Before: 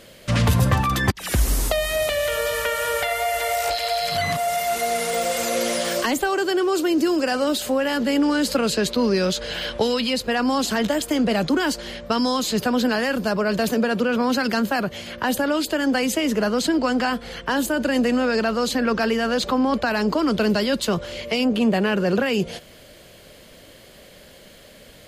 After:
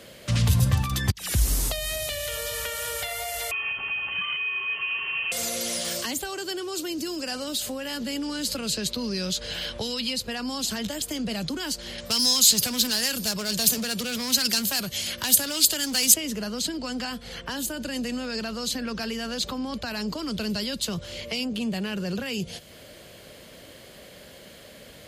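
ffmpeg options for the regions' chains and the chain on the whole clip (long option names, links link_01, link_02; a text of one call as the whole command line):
ffmpeg -i in.wav -filter_complex "[0:a]asettb=1/sr,asplit=3[link_01][link_02][link_03];[link_01]atrim=end=3.514[link_04];[link_02]atrim=start=3.51:end=5.32,asetpts=PTS-STARTPTS,afade=type=in:duration=0.004:curve=qsin,afade=type=out:start_time=1.806:duration=0.004:curve=qsin,aeval=exprs='val(0)+0.0126*(sin(2*PI*60*n/s)+sin(2*PI*2*60*n/s)/2+sin(2*PI*3*60*n/s)/3+sin(2*PI*4*60*n/s)/4+sin(2*PI*5*60*n/s)/5)':channel_layout=same,lowpass=frequency=2700:width_type=q:width=0.5098,lowpass=frequency=2700:width_type=q:width=0.6013,lowpass=frequency=2700:width_type=q:width=0.9,lowpass=frequency=2700:width_type=q:width=2.563,afreqshift=-3200[link_05];[link_03]atrim=start=5.316[link_06];[link_04][link_05]acrossfade=duration=0.004:curve1=hsin:curve2=qsin[link_07];[link_07][link_06]acrossfade=duration=0.004:curve1=qsin:curve2=hsin,asettb=1/sr,asplit=3[link_08][link_09][link_10];[link_08]atrim=end=11.984[link_11];[link_09]atrim=start=11.98:end=16.14,asetpts=PTS-STARTPTS,afade=type=in:duration=0.004:curve=qsin,afade=type=out:start_time=4.156:duration=0.004:curve=qsin,asoftclip=type=hard:threshold=-18dB,equalizer=frequency=12000:width_type=o:width=2.8:gain=15[link_12];[link_10]atrim=start=16.136[link_13];[link_11][link_12]acrossfade=duration=0.004:curve1=hsin:curve2=qsin[link_14];[link_14][link_13]acrossfade=duration=0.004:curve1=qsin:curve2=hsin,highpass=51,acrossover=split=160|3000[link_15][link_16][link_17];[link_16]acompressor=threshold=-40dB:ratio=2.5[link_18];[link_15][link_18][link_17]amix=inputs=3:normalize=0" out.wav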